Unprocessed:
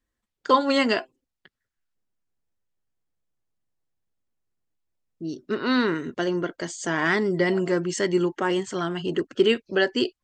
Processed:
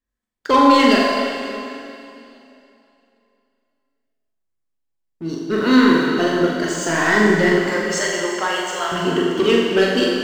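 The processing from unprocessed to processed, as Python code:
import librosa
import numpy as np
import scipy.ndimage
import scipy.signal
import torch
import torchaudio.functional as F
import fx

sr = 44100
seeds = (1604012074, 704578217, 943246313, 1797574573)

y = fx.highpass(x, sr, hz=540.0, slope=24, at=(7.52, 8.92))
y = fx.leveller(y, sr, passes=2)
y = fx.room_flutter(y, sr, wall_m=7.3, rt60_s=0.55)
y = fx.rev_plate(y, sr, seeds[0], rt60_s=2.8, hf_ratio=0.95, predelay_ms=0, drr_db=-0.5)
y = y * 10.0 ** (-3.0 / 20.0)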